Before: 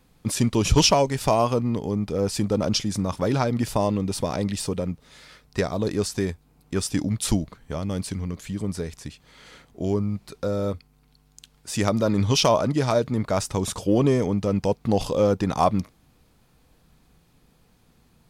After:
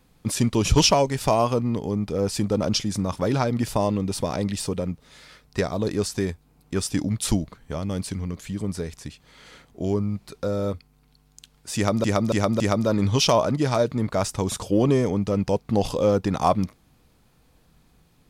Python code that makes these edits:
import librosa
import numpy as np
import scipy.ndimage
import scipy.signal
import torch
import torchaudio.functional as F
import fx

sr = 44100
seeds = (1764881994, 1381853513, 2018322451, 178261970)

y = fx.edit(x, sr, fx.repeat(start_s=11.76, length_s=0.28, count=4), tone=tone)